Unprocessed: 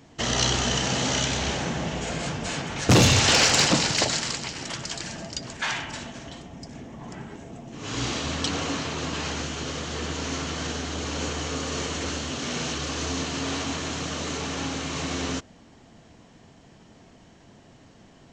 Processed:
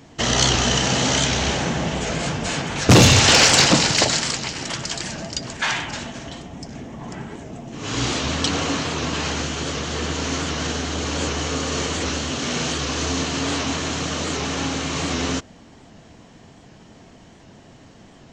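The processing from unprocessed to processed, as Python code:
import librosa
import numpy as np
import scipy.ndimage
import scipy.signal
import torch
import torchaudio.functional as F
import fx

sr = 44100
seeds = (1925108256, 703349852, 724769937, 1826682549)

y = fx.record_warp(x, sr, rpm=78.0, depth_cents=100.0)
y = F.gain(torch.from_numpy(y), 5.5).numpy()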